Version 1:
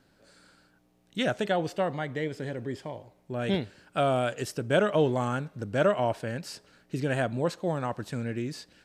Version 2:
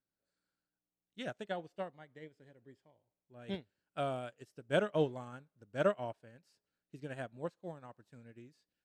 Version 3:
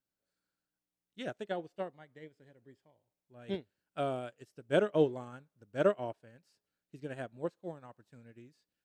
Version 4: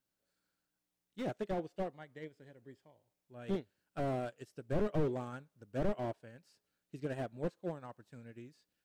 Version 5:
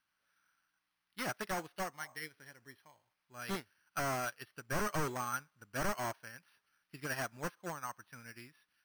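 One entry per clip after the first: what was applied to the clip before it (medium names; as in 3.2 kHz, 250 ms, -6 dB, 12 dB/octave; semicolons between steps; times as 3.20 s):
upward expansion 2.5:1, over -37 dBFS; trim -5 dB
dynamic bell 370 Hz, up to +7 dB, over -49 dBFS, Q 1.5
slew-rate limiter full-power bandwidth 8 Hz; trim +3.5 dB
resonant low shelf 780 Hz -13.5 dB, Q 1.5; spectral replace 2.04–2.27 s, 480–1200 Hz both; careless resampling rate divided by 6×, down filtered, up hold; trim +10 dB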